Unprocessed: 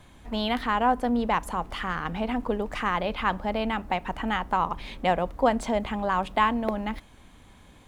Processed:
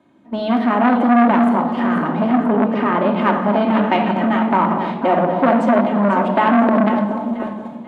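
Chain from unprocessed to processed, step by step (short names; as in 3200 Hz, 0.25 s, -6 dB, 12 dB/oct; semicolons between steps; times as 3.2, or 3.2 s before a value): tilt -4.5 dB/oct; AGC gain up to 14.5 dB; HPF 220 Hz 24 dB/oct; on a send: echo with dull and thin repeats by turns 0.245 s, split 910 Hz, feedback 74%, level -7 dB; on the sum: gate -27 dBFS, range -8 dB; 2.46–3.16 LPF 4500 Hz 12 dB/oct; 3.75–4.29 bell 3100 Hz +12 dB -> +1.5 dB 1.9 oct; shoebox room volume 2000 m³, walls furnished, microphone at 2.7 m; maximiser +2 dB; core saturation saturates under 770 Hz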